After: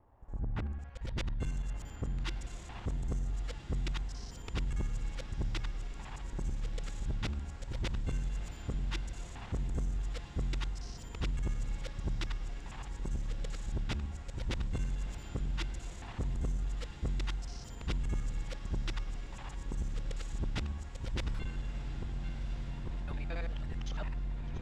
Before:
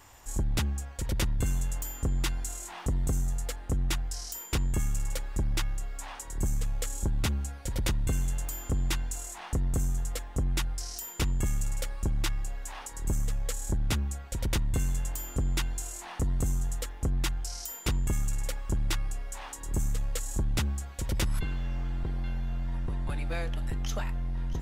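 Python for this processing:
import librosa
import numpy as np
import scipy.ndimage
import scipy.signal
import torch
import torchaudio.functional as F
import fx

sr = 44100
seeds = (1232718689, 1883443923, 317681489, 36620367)

y = fx.local_reverse(x, sr, ms=56.0)
y = fx.filter_sweep_lowpass(y, sr, from_hz=650.0, to_hz=4200.0, start_s=0.05, end_s=1.15, q=0.87)
y = fx.echo_diffused(y, sr, ms=1386, feedback_pct=52, wet_db=-10.0)
y = y * 10.0 ** (-7.0 / 20.0)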